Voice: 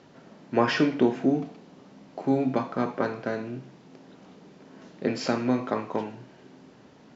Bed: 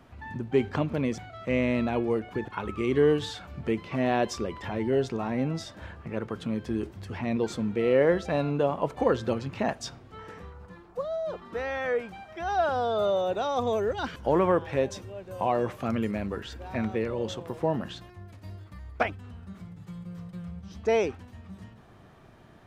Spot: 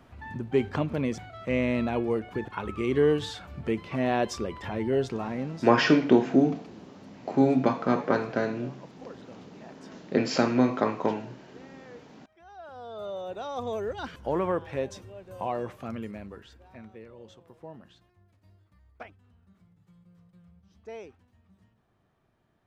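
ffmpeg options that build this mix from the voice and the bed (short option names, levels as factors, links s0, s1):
-filter_complex "[0:a]adelay=5100,volume=1.33[s0];[1:a]volume=6.31,afade=t=out:st=5.13:d=0.69:silence=0.0944061,afade=t=in:st=12.61:d=1.22:silence=0.149624,afade=t=out:st=15.4:d=1.43:silence=0.223872[s1];[s0][s1]amix=inputs=2:normalize=0"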